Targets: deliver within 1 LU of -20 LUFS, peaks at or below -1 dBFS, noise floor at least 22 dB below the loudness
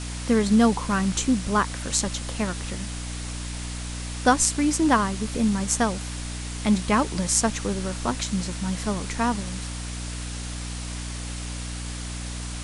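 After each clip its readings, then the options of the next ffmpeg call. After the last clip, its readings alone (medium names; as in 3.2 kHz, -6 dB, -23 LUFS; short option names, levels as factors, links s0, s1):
hum 60 Hz; highest harmonic 300 Hz; hum level -31 dBFS; noise floor -33 dBFS; noise floor target -48 dBFS; loudness -25.5 LUFS; peak level -3.5 dBFS; loudness target -20.0 LUFS
-> -af "bandreject=f=60:t=h:w=4,bandreject=f=120:t=h:w=4,bandreject=f=180:t=h:w=4,bandreject=f=240:t=h:w=4,bandreject=f=300:t=h:w=4"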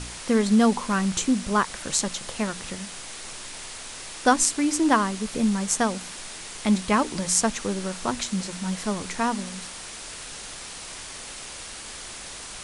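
hum not found; noise floor -39 dBFS; noise floor target -48 dBFS
-> -af "afftdn=nr=9:nf=-39"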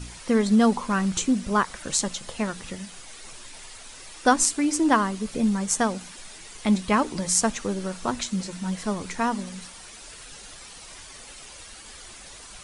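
noise floor -44 dBFS; noise floor target -47 dBFS
-> -af "afftdn=nr=6:nf=-44"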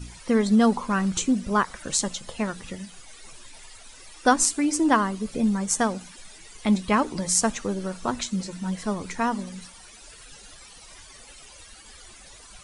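noise floor -48 dBFS; loudness -24.5 LUFS; peak level -3.5 dBFS; loudness target -20.0 LUFS
-> -af "volume=1.68,alimiter=limit=0.891:level=0:latency=1"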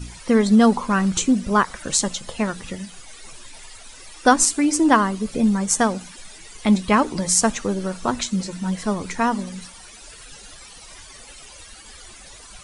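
loudness -20.0 LUFS; peak level -1.0 dBFS; noise floor -43 dBFS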